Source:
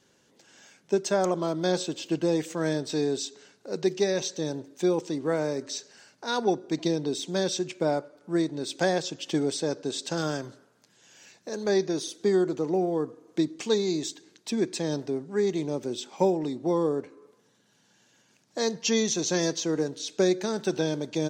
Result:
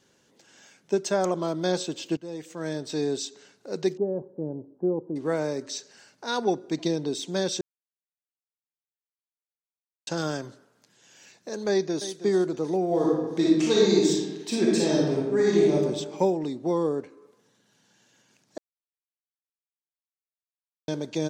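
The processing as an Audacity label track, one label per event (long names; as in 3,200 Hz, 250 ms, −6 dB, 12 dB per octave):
2.170000	3.100000	fade in, from −18 dB
3.970000	5.160000	Gaussian smoothing sigma 11 samples
7.610000	10.070000	silence
11.690000	12.160000	delay throw 320 ms, feedback 50%, level −13 dB
12.860000	15.740000	thrown reverb, RT60 1.2 s, DRR −5.5 dB
18.580000	20.880000	silence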